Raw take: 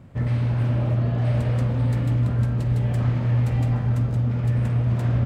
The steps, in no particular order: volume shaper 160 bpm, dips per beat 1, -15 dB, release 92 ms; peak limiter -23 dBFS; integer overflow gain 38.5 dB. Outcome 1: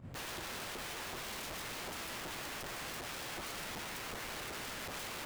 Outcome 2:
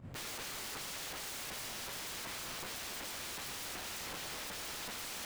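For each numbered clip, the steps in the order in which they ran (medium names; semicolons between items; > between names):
peak limiter > volume shaper > integer overflow; volume shaper > integer overflow > peak limiter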